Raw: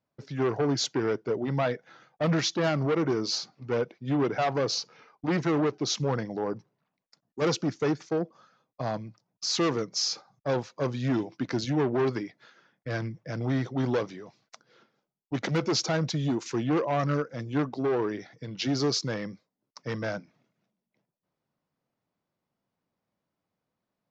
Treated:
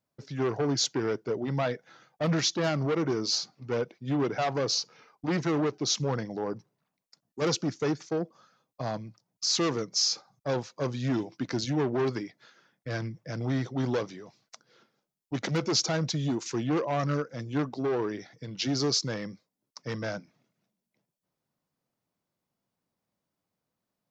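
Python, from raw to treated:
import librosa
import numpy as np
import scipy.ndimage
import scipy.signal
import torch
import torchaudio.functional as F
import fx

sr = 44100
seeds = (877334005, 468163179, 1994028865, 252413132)

y = fx.bass_treble(x, sr, bass_db=1, treble_db=6)
y = y * librosa.db_to_amplitude(-2.0)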